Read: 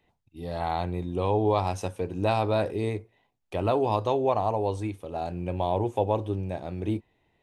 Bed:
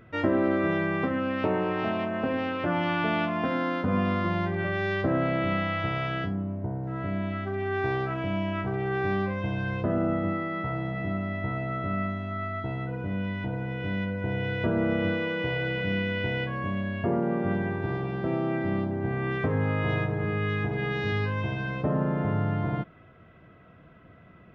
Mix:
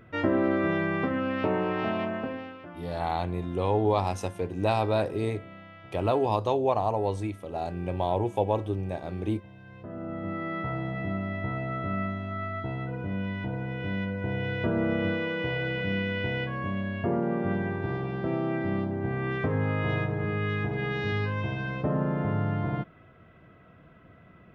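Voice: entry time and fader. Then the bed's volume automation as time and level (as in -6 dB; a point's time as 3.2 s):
2.40 s, -0.5 dB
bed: 2.1 s -0.5 dB
2.77 s -19.5 dB
9.62 s -19.5 dB
10.49 s -1 dB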